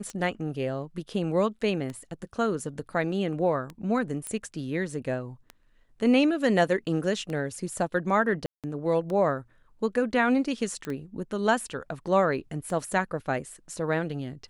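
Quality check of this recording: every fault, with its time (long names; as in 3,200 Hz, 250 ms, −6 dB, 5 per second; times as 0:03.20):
scratch tick 33 1/3 rpm −23 dBFS
0:04.27: click −20 dBFS
0:08.46–0:08.64: drop-out 177 ms
0:10.85: click −21 dBFS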